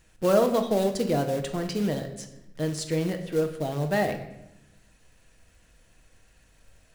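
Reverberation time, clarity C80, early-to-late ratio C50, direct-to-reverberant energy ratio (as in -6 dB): 0.90 s, 12.0 dB, 9.5 dB, 5.0 dB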